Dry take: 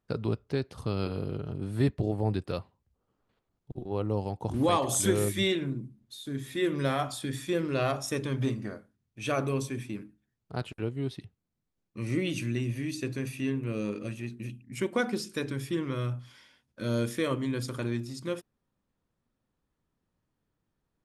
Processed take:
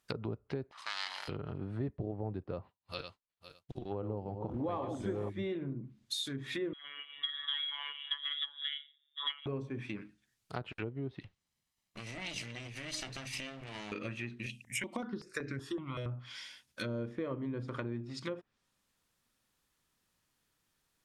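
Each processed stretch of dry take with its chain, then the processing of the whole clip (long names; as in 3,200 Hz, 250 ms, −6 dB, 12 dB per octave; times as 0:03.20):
0:00.71–0:01.28: lower of the sound and its delayed copy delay 1 ms + high-pass filter 1,100 Hz
0:02.50–0:05.30: feedback delay that plays each chunk backwards 254 ms, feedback 44%, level −8.5 dB + downward expander −58 dBFS
0:06.73–0:09.46: phaser with its sweep stopped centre 730 Hz, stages 8 + phases set to zero 144 Hz + voice inversion scrambler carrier 3,600 Hz
0:11.23–0:13.92: lower of the sound and its delayed copy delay 1 ms + high-shelf EQ 5,400 Hz −5.5 dB + downward compressor 12 to 1, threshold −39 dBFS
0:14.46–0:16.06: high-shelf EQ 3,600 Hz +11.5 dB + step-sequenced phaser 5.3 Hz 310–3,300 Hz
whole clip: treble cut that deepens with the level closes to 660 Hz, closed at −29 dBFS; tilt shelving filter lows −9.5 dB, about 1,200 Hz; downward compressor 3 to 1, threshold −39 dBFS; level +4.5 dB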